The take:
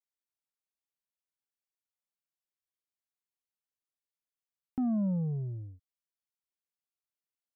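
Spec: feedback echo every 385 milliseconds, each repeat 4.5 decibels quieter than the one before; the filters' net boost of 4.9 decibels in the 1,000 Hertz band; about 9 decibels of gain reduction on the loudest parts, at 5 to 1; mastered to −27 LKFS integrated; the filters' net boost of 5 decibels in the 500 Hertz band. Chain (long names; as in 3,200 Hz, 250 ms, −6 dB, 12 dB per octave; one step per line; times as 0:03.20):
parametric band 500 Hz +4.5 dB
parametric band 1,000 Hz +5 dB
downward compressor 5 to 1, threshold −37 dBFS
repeating echo 385 ms, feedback 60%, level −4.5 dB
level +13.5 dB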